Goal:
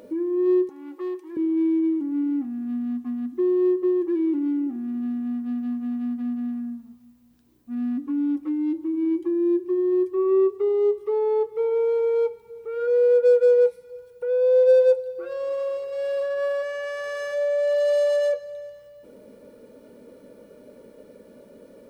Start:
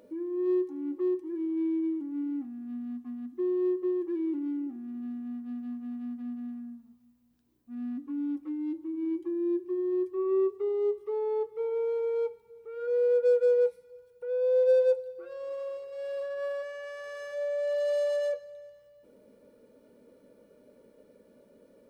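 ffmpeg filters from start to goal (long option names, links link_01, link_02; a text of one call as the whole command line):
ffmpeg -i in.wav -filter_complex "[0:a]asettb=1/sr,asplit=3[link_01][link_02][link_03];[link_01]atrim=end=0.694[link_04];[link_02]atrim=start=0.69:end=1.37,asetpts=PTS-STARTPTS,afade=type=in:duration=0.004:curve=qsin,afade=type=out:start_time=0.676:duration=0.004:curve=qsin,highpass=700[link_05];[link_03]atrim=start=1.366[link_06];[link_04][link_05]acrossfade=duration=0.004:curve1=hsin:curve2=qsin[link_07];[link_07][link_06]acrossfade=duration=0.004:curve1=qsin:curve2=hsin,asplit=2[link_08][link_09];[link_09]acompressor=threshold=-37dB:ratio=6,volume=-2dB[link_10];[link_08][link_10]amix=inputs=2:normalize=0,volume=5.5dB" out.wav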